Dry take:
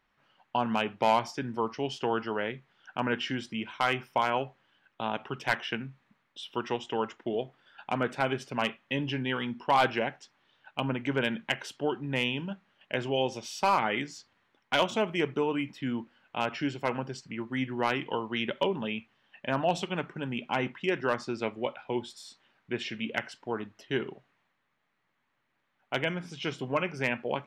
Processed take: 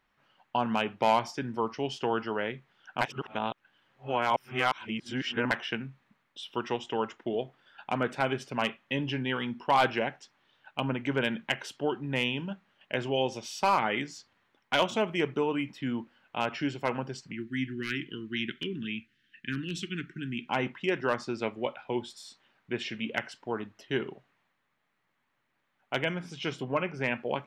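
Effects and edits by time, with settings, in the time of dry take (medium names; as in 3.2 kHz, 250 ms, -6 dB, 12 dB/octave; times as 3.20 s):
3.01–5.51 s: reverse
17.32–20.48 s: elliptic band-stop 340–1600 Hz, stop band 80 dB
26.63–27.08 s: low-pass 2.9 kHz 6 dB/octave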